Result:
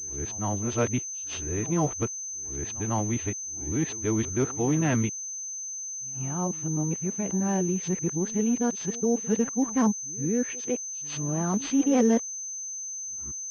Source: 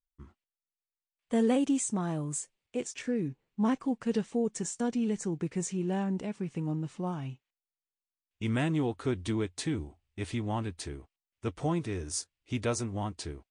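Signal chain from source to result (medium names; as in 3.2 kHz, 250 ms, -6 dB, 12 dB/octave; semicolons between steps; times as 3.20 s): reverse the whole clip; pre-echo 150 ms -19 dB; class-D stage that switches slowly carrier 6.2 kHz; trim +4.5 dB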